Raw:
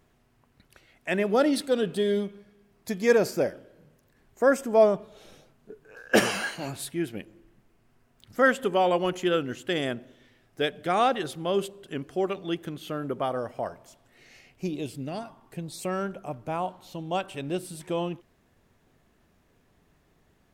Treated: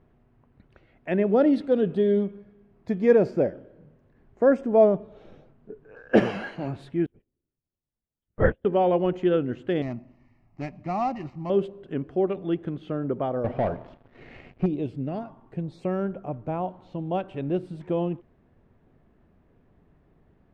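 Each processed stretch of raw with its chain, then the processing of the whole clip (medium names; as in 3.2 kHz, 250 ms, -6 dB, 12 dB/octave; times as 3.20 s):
7.06–8.65 s: LPC vocoder at 8 kHz whisper + upward expansion 2.5:1, over -39 dBFS
9.82–11.50 s: dead-time distortion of 0.12 ms + static phaser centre 2.3 kHz, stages 8
13.44–14.66 s: low-pass 4.1 kHz 24 dB/octave + waveshaping leveller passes 3
whole clip: dynamic bell 1.2 kHz, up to -4 dB, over -38 dBFS, Q 1.5; low-pass 2.6 kHz 12 dB/octave; tilt shelf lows +5.5 dB, about 910 Hz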